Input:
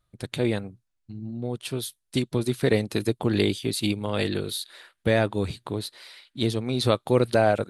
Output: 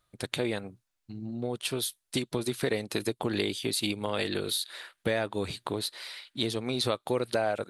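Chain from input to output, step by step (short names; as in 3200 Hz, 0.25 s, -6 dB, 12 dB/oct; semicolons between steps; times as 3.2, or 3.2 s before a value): low shelf 260 Hz -11 dB; compressor 3:1, threshold -32 dBFS, peak gain reduction 11 dB; gain +4.5 dB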